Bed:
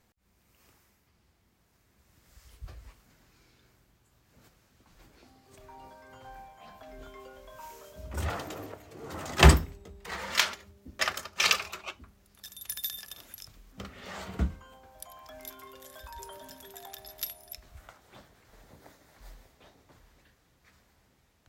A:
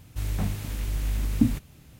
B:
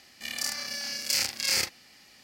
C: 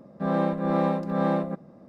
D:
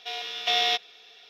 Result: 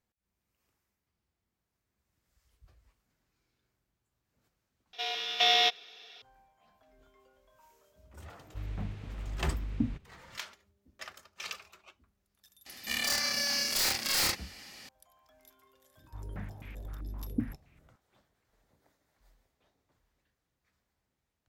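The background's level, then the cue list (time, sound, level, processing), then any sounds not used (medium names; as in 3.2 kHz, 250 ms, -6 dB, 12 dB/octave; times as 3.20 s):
bed -16.5 dB
4.93 s: replace with D -0.5 dB
8.39 s: add A -9.5 dB + low-pass 3.2 kHz
12.66 s: add B -14.5 dB + sine folder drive 16 dB, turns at -9 dBFS
15.97 s: add A -13.5 dB + step-sequenced low-pass 7.7 Hz 340–2300 Hz
not used: C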